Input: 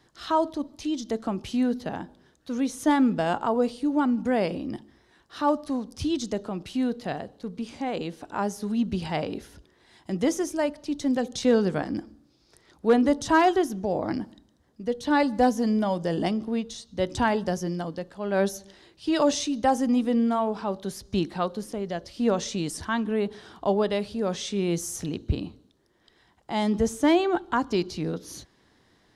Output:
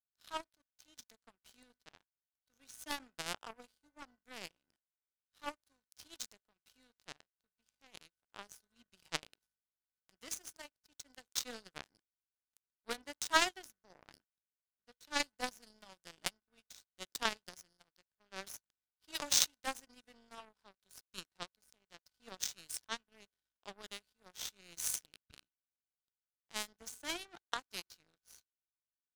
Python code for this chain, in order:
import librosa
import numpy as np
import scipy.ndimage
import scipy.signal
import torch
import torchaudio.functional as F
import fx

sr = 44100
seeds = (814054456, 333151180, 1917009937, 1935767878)

y = fx.high_shelf(x, sr, hz=3000.0, db=8.5)
y = y + 10.0 ** (-47.0 / 20.0) * np.sin(2.0 * np.pi * 1500.0 * np.arange(len(y)) / sr)
y = fx.tilt_shelf(y, sr, db=-7.5, hz=920.0)
y = fx.add_hum(y, sr, base_hz=50, snr_db=20)
y = fx.power_curve(y, sr, exponent=3.0)
y = y * librosa.db_to_amplitude(1.0)